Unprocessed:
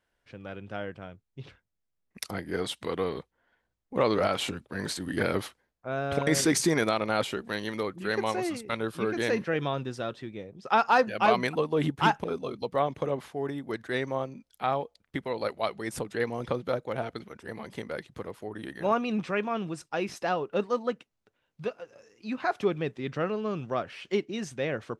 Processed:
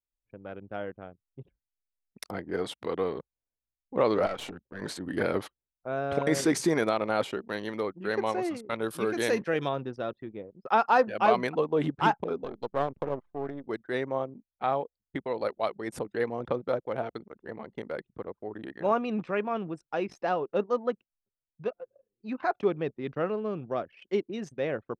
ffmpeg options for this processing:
-filter_complex "[0:a]asettb=1/sr,asplit=3[s0][s1][s2];[s0]atrim=end=4.264[s3];[s1]atrim=start=4.26:end=4.82,asetpts=PTS-STARTPTS,afade=t=in:d=0.004:c=qsin,afade=t=out:st=0.556:d=0.004:c=qsin,aeval=exprs='(tanh(17.8*val(0)+0.7)-tanh(0.7))/17.8':c=same[s4];[s2]atrim=start=4.816[s5];[s3][s4]acrossfade=d=0.004:c1=hsin:c2=qsin[s6];[s6][s5]acrossfade=d=0.004:c1=qsin:c2=hsin,asettb=1/sr,asplit=3[s7][s8][s9];[s7]atrim=end=8.824[s10];[s8]atrim=start=8.82:end=9.69,asetpts=PTS-STARTPTS,afade=t=in:d=0.004:c=qsin,afade=t=out:st=0.866:d=0.004:c=qsin,aemphasis=mode=production:type=75kf[s11];[s9]atrim=start=9.686[s12];[s10][s11]acrossfade=d=0.004:c1=hsin:c2=qsin[s13];[s13][s12]acrossfade=d=0.004:c1=qsin:c2=hsin,asettb=1/sr,asplit=3[s14][s15][s16];[s14]atrim=end=12.444[s17];[s15]atrim=start=12.44:end=13.66,asetpts=PTS-STARTPTS,afade=t=in:d=0.004:c=qsin,afade=t=out:st=1.216:d=0.004:c=qsin,aeval=exprs='if(lt(val(0),0),0.251*val(0),val(0))':c=same[s18];[s16]atrim=start=13.656[s19];[s17][s18]acrossfade=d=0.004:c1=hsin:c2=qsin[s20];[s20][s19]acrossfade=d=0.004:c1=qsin:c2=hsin,asettb=1/sr,asplit=3[s21][s22][s23];[s21]atrim=end=23.404[s24];[s22]atrim=start=23.4:end=24.45,asetpts=PTS-STARTPTS,afade=t=in:d=0.004:c=qsin,afade=t=out:st=1.046:d=0.004:c=qsin,equalizer=f=1100:w=1.1:g=-3.5[s25];[s23]atrim=start=24.446[s26];[s24][s25]acrossfade=d=0.004:c1=hsin:c2=qsin[s27];[s27][s26]acrossfade=d=0.004:c1=qsin:c2=hsin,anlmdn=0.251,equalizer=f=550:w=0.35:g=7.5,volume=0.473"

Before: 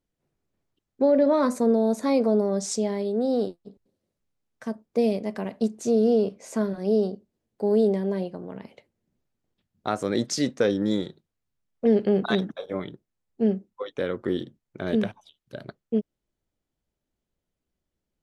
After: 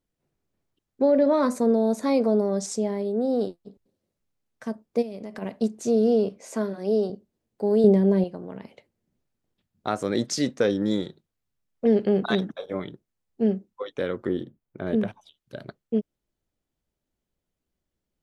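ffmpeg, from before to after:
-filter_complex "[0:a]asettb=1/sr,asplit=3[s0][s1][s2];[s0]atrim=end=2.664[s3];[s1]atrim=start=2.66:end=3.41,asetpts=PTS-STARTPTS,afade=t=in:d=0.004:c=qsin,afade=t=out:st=0.746:d=0.004:c=qsin,equalizer=f=4000:t=o:w=2:g=-6[s4];[s2]atrim=start=3.406[s5];[s3][s4]acrossfade=d=0.004:c1=hsin:c2=qsin[s6];[s6][s5]acrossfade=d=0.004:c1=qsin:c2=hsin,asplit=3[s7][s8][s9];[s7]afade=t=out:st=5.01:d=0.02[s10];[s8]acompressor=threshold=0.0282:ratio=12:attack=3.2:release=140:knee=1:detection=peak,afade=t=in:st=5.01:d=0.02,afade=t=out:st=5.41:d=0.02[s11];[s9]afade=t=in:st=5.41:d=0.02[s12];[s10][s11][s12]amix=inputs=3:normalize=0,asettb=1/sr,asplit=3[s13][s14][s15];[s13]atrim=end=6.414[s16];[s14]atrim=start=6.41:end=7.1,asetpts=PTS-STARTPTS,afade=t=in:d=0.004:c=qsin,afade=t=out:st=0.686:d=0.004:c=qsin,highpass=210[s17];[s15]atrim=start=7.096[s18];[s16][s17]acrossfade=d=0.004:c1=hsin:c2=qsin[s19];[s19][s18]acrossfade=d=0.004:c1=qsin:c2=hsin,asettb=1/sr,asplit=3[s20][s21][s22];[s20]atrim=end=7.844[s23];[s21]atrim=start=7.84:end=8.24,asetpts=PTS-STARTPTS,afade=t=in:d=0.004:c=qsin,afade=t=out:st=0.396:d=0.004:c=qsin,lowshelf=f=490:g=9.5[s24];[s22]atrim=start=8.236[s25];[s23][s24]acrossfade=d=0.004:c1=hsin:c2=qsin[s26];[s26][s25]acrossfade=d=0.004:c1=qsin:c2=hsin,asettb=1/sr,asplit=3[s27][s28][s29];[s27]atrim=end=14.284[s30];[s28]atrim=start=14.28:end=15.08,asetpts=PTS-STARTPTS,afade=t=in:d=0.004:c=qsin,afade=t=out:st=0.796:d=0.004:c=qsin,equalizer=f=5800:w=0.49:g=-11.5[s31];[s29]atrim=start=15.076[s32];[s30][s31]acrossfade=d=0.004:c1=hsin:c2=qsin[s33];[s33][s32]acrossfade=d=0.004:c1=qsin:c2=hsin"

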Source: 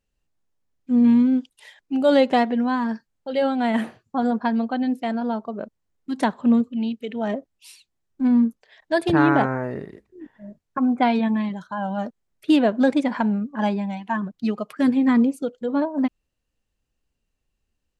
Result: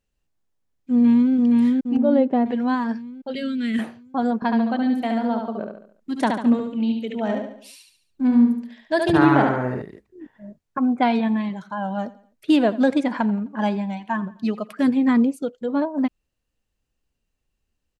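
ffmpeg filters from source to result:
-filter_complex "[0:a]asplit=2[s0][s1];[s1]afade=t=in:st=0.91:d=0.01,afade=t=out:st=1.33:d=0.01,aecho=0:1:470|940|1410|1880|2350|2820|3290:0.841395|0.420698|0.210349|0.105174|0.0525872|0.0262936|0.0131468[s2];[s0][s2]amix=inputs=2:normalize=0,asettb=1/sr,asplit=3[s3][s4][s5];[s3]atrim=end=1.974[s6];[s4]atrim=start=1.97:end=2.46,asetpts=PTS-STARTPTS,afade=t=in:d=0.004:c=qsin,afade=t=out:st=0.486:d=0.004:c=qsin,bandpass=f=280:t=q:w=0.69[s7];[s5]atrim=start=2.456[s8];[s6][s7]acrossfade=d=0.004:c1=hsin:c2=qsin[s9];[s9][s8]acrossfade=d=0.004:c1=qsin:c2=hsin,asettb=1/sr,asplit=3[s10][s11][s12];[s10]atrim=end=3.354[s13];[s11]atrim=start=3.35:end=3.79,asetpts=PTS-STARTPTS,afade=t=in:d=0.004:c=qsin,afade=t=out:st=0.436:d=0.004:c=qsin,asuperstop=centerf=830:order=4:qfactor=0.56[s14];[s12]atrim=start=3.786[s15];[s13][s14]acrossfade=d=0.004:c1=hsin:c2=qsin[s16];[s16][s15]acrossfade=d=0.004:c1=qsin:c2=hsin,asettb=1/sr,asplit=3[s17][s18][s19];[s17]atrim=end=4.354[s20];[s18]atrim=start=4.35:end=9.82,asetpts=PTS-STARTPTS,afade=t=in:d=0.004:c=qsin,afade=t=out:st=5.466:d=0.004:c=qsin,aecho=1:1:71|142|213|284|355:0.596|0.262|0.115|0.0507|0.0223,atrim=end_sample=241227[s21];[s19]atrim=start=9.816[s22];[s20][s21]acrossfade=d=0.004:c1=hsin:c2=qsin[s23];[s23][s22]acrossfade=d=0.004:c1=qsin:c2=hsin,asettb=1/sr,asplit=3[s24][s25][s26];[s24]atrim=end=11.024[s27];[s25]atrim=start=11.02:end=14.86,asetpts=PTS-STARTPTS,afade=t=in:d=0.004:c=qsin,afade=t=out:st=3.836:d=0.004:c=qsin,aecho=1:1:86|172|258:0.112|0.046|0.0189,atrim=end_sample=169344[s28];[s26]atrim=start=14.856[s29];[s27][s28]acrossfade=d=0.004:c1=hsin:c2=qsin[s30];[s30][s29]acrossfade=d=0.004:c1=qsin:c2=hsin"

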